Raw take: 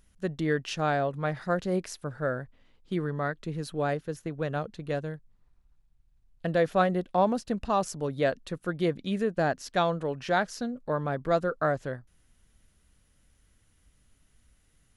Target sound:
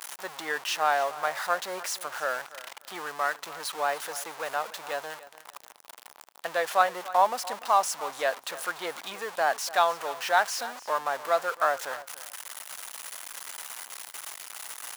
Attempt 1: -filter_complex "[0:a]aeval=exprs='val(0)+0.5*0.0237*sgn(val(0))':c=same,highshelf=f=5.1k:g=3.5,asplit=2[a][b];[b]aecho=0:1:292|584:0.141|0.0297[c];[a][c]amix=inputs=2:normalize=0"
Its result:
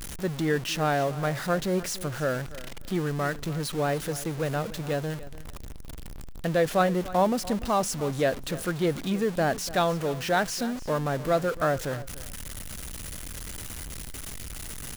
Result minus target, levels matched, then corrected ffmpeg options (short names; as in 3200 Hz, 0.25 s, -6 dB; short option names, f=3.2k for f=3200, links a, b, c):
1000 Hz band -5.0 dB
-filter_complex "[0:a]aeval=exprs='val(0)+0.5*0.0237*sgn(val(0))':c=same,highpass=f=890:t=q:w=2,highshelf=f=5.1k:g=3.5,asplit=2[a][b];[b]aecho=0:1:292|584:0.141|0.0297[c];[a][c]amix=inputs=2:normalize=0"